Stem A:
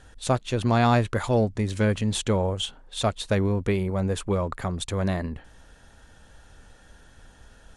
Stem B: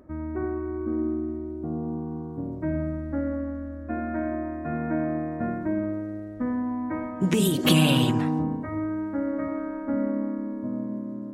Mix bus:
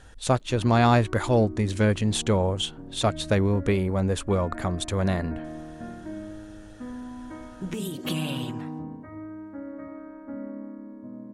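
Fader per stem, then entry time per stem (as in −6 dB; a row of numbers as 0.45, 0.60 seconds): +1.0, −10.0 decibels; 0.00, 0.40 seconds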